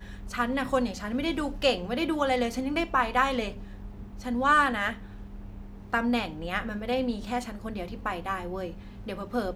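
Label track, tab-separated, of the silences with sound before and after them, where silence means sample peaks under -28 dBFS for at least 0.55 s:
3.490000	4.260000	silence
4.930000	5.940000	silence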